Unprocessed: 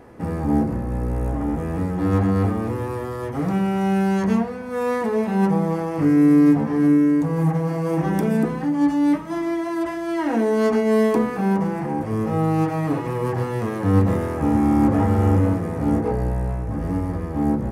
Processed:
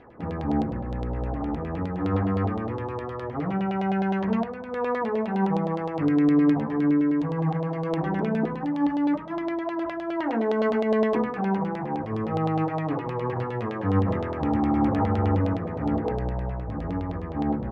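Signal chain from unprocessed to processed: LFO low-pass saw down 9.7 Hz 610–3700 Hz; trim -6 dB

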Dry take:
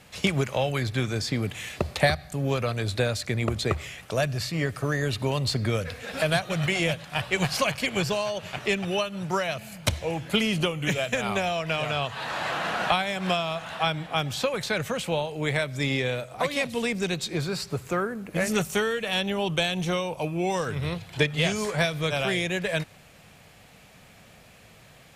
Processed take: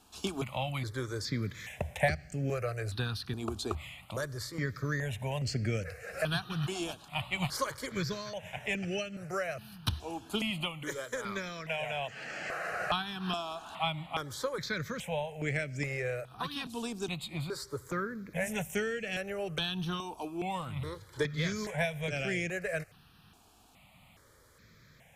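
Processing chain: 10.50–12.72 s: peaking EQ 80 Hz -14.5 dB 1.3 oct; stepped phaser 2.4 Hz 540–3700 Hz; trim -5 dB

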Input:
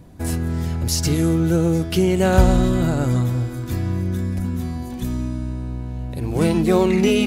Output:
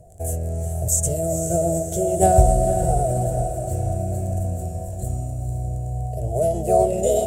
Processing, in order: crackle 14 per s -28 dBFS; FFT filter 110 Hz 0 dB, 290 Hz -19 dB, 410 Hz +1 dB, 600 Hz +10 dB, 1 kHz -29 dB, 1.7 kHz -19 dB, 4.1 kHz -17 dB, 6.4 kHz +10 dB, 15 kHz -10 dB; formant shift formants +3 st; echo that smears into a reverb 480 ms, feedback 56%, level -8 dB; trim -1 dB

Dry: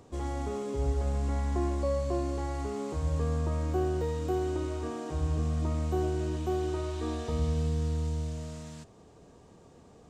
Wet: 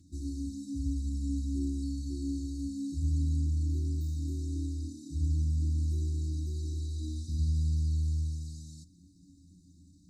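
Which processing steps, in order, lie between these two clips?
brick-wall FIR band-stop 350–3600 Hz; inharmonic resonator 83 Hz, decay 0.26 s, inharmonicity 0.03; trim +7 dB

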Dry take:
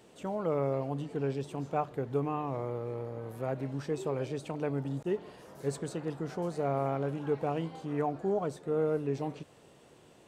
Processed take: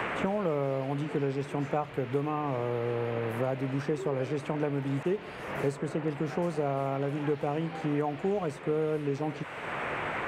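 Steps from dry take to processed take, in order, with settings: band noise 470–2600 Hz -52 dBFS; three bands compressed up and down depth 100%; trim +1.5 dB

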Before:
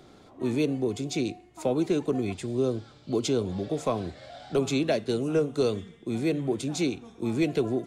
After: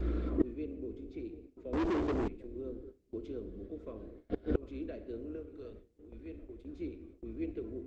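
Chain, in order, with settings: octave divider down 2 oct, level -2 dB; 4.13–4.63 s: slow attack 225 ms; hum 60 Hz, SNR 18 dB; low-pass 1.6 kHz 12 dB/octave; 5.35–6.65 s: peaking EQ 330 Hz -7.5 dB 3 oct; static phaser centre 340 Hz, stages 4; filtered feedback delay 744 ms, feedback 59%, low-pass 1 kHz, level -14 dB; simulated room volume 1600 m³, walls mixed, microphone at 0.71 m; inverted gate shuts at -32 dBFS, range -30 dB; 1.73–2.28 s: waveshaping leveller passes 5; gate with hold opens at -56 dBFS; trim +16 dB; Opus 24 kbps 48 kHz

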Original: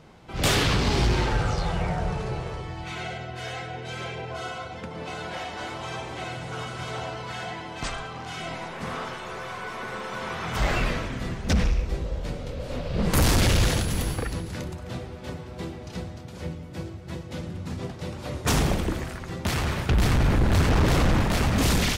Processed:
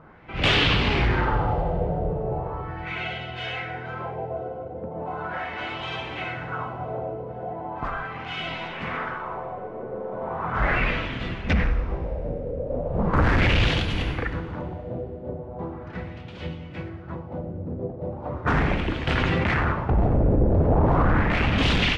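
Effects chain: LFO low-pass sine 0.38 Hz 510–3100 Hz; FDN reverb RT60 2.3 s, high-frequency decay 0.9×, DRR 13 dB; 19.07–19.72 s: level flattener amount 100%

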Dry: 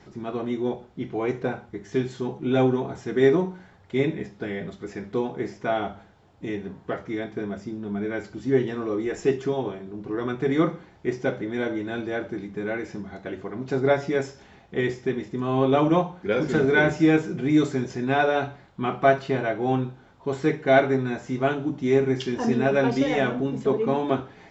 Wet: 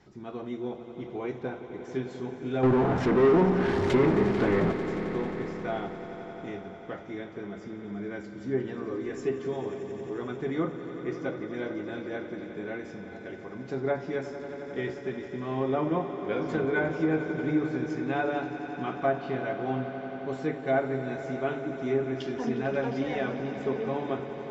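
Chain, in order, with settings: 2.63–4.72 s: power-law waveshaper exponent 0.35; low-pass that closes with the level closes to 1.6 kHz, closed at -14 dBFS; echo with a slow build-up 89 ms, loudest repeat 5, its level -14.5 dB; trim -8 dB

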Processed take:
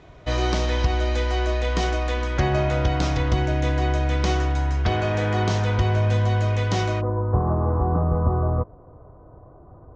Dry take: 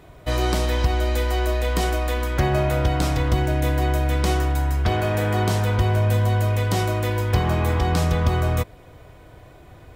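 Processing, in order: elliptic low-pass 6.5 kHz, stop band 70 dB, from 7.00 s 1.2 kHz

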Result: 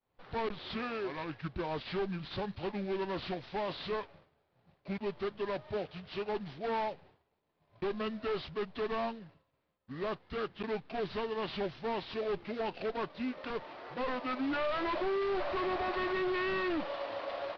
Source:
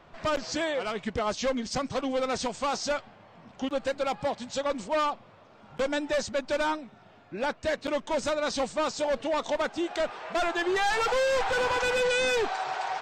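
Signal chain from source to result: CVSD coder 32 kbps; expander -42 dBFS; band-stop 650 Hz, Q 12; speed mistake 45 rpm record played at 33 rpm; trim -6.5 dB

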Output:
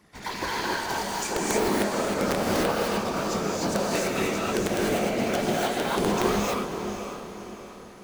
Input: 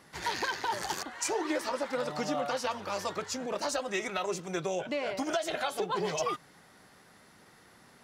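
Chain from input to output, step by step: bass shelf 330 Hz +6.5 dB; in parallel at -9 dB: bit crusher 5-bit; on the sum: flange 2 Hz, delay 7.3 ms, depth 7.7 ms, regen -65%; whisper effect; small resonant body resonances 200/2300 Hz, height 9 dB, ringing for 95 ms; on a send: echo that smears into a reverb 537 ms, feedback 43%, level -8 dB; on the sum: integer overflow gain 18.5 dB; gated-style reverb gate 330 ms rising, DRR -4.5 dB

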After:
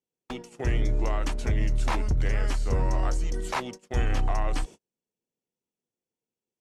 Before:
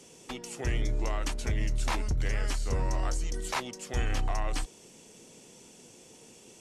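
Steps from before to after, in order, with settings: treble shelf 2.6 kHz -8.5 dB; gate -43 dBFS, range -42 dB; trim +4.5 dB

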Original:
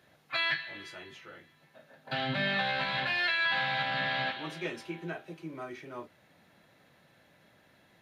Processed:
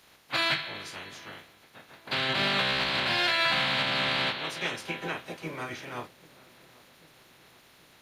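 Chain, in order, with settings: spectral peaks clipped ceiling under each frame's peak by 19 dB; in parallel at -5 dB: saturation -32 dBFS, distortion -9 dB; on the sum: filtered feedback delay 788 ms, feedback 63%, low-pass 1.1 kHz, level -21.5 dB; trim +1.5 dB

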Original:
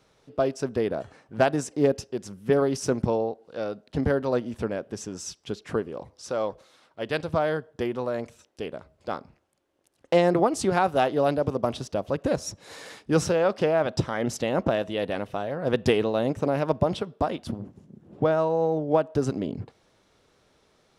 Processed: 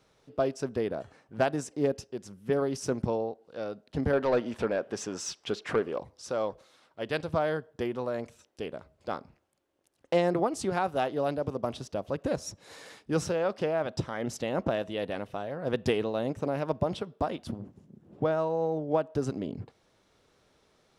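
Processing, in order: gain riding within 3 dB 2 s; 4.13–5.99 s: overdrive pedal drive 16 dB, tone 2.9 kHz, clips at -10 dBFS; trim -5.5 dB

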